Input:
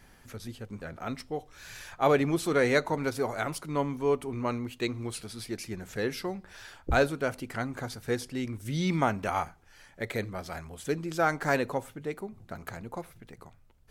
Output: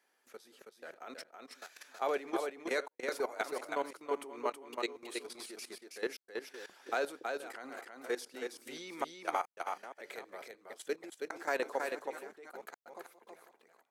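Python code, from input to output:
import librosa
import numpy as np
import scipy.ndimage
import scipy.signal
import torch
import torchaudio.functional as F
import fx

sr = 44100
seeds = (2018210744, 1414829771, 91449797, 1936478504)

p1 = fx.reverse_delay(x, sr, ms=451, wet_db=-12.5)
p2 = scipy.signal.sosfilt(scipy.signal.butter(4, 350.0, 'highpass', fs=sr, output='sos'), p1)
p3 = fx.level_steps(p2, sr, step_db=15)
p4 = fx.step_gate(p3, sr, bpm=73, pattern='xxx.xx.xxxxx.x.x', floor_db=-60.0, edge_ms=4.5)
p5 = p4 + fx.echo_single(p4, sr, ms=323, db=-4.5, dry=0)
y = F.gain(torch.from_numpy(p5), -1.5).numpy()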